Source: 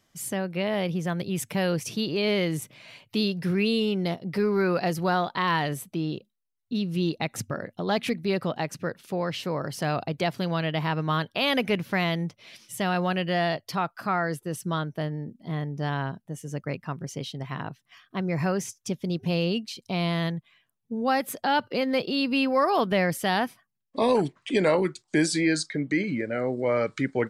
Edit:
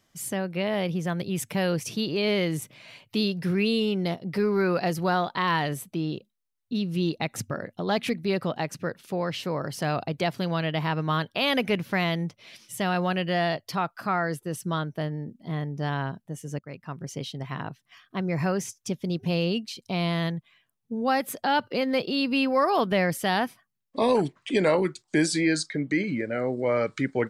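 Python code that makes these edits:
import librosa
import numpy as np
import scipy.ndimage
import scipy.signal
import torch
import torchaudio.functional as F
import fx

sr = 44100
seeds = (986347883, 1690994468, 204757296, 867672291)

y = fx.edit(x, sr, fx.fade_in_from(start_s=16.59, length_s=0.54, floor_db=-14.5), tone=tone)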